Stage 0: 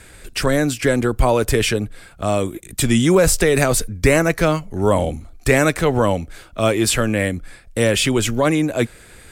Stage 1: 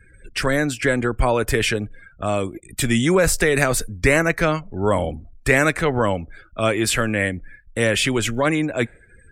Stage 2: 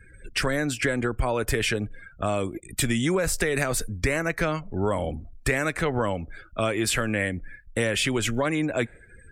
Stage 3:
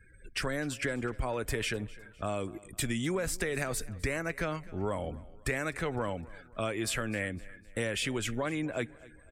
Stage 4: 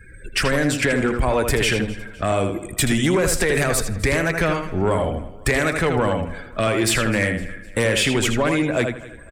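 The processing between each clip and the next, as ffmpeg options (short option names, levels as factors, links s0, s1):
-af "afftdn=nr=32:nf=-40,equalizer=f=1800:w=1.2:g=6,volume=0.668"
-af "acompressor=threshold=0.0891:ratio=6"
-af "aecho=1:1:255|510|765:0.0891|0.0383|0.0165,volume=0.398"
-filter_complex "[0:a]asplit=2[s0][s1];[s1]adelay=80,lowpass=f=4400:p=1,volume=0.501,asplit=2[s2][s3];[s3]adelay=80,lowpass=f=4400:p=1,volume=0.25,asplit=2[s4][s5];[s5]adelay=80,lowpass=f=4400:p=1,volume=0.25[s6];[s0][s2][s4][s6]amix=inputs=4:normalize=0,aeval=exprs='0.141*sin(PI/2*1.78*val(0)/0.141)':c=same,volume=1.78"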